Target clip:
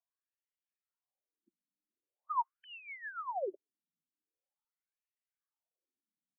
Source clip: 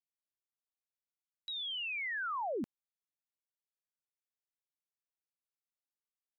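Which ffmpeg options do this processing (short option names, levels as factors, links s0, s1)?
-filter_complex "[0:a]afftfilt=real='re*pow(10,12/40*sin(2*PI*(1.9*log(max(b,1)*sr/1024/100)/log(2)-(2.1)*(pts-256)/sr)))':imag='im*pow(10,12/40*sin(2*PI*(1.9*log(max(b,1)*sr/1024/100)/log(2)-(2.1)*(pts-256)/sr)))':win_size=1024:overlap=0.75,tiltshelf=f=1200:g=9.5,acrossover=split=3300[s0][s1];[s1]acompressor=threshold=0.00112:ratio=4:attack=1:release=60[s2];[s0][s2]amix=inputs=2:normalize=0,aecho=1:1:904:0.376,afftfilt=real='re*between(b*sr/1024,220*pow(2500/220,0.5+0.5*sin(2*PI*0.44*pts/sr))/1.41,220*pow(2500/220,0.5+0.5*sin(2*PI*0.44*pts/sr))*1.41)':imag='im*between(b*sr/1024,220*pow(2500/220,0.5+0.5*sin(2*PI*0.44*pts/sr))/1.41,220*pow(2500/220,0.5+0.5*sin(2*PI*0.44*pts/sr))*1.41)':win_size=1024:overlap=0.75,volume=1.33"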